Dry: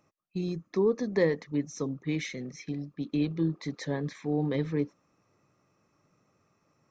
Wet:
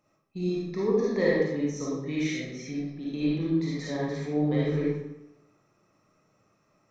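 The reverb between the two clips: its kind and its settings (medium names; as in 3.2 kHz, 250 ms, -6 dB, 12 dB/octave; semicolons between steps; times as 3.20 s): algorithmic reverb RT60 0.87 s, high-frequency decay 0.8×, pre-delay 10 ms, DRR -7 dB; trim -4.5 dB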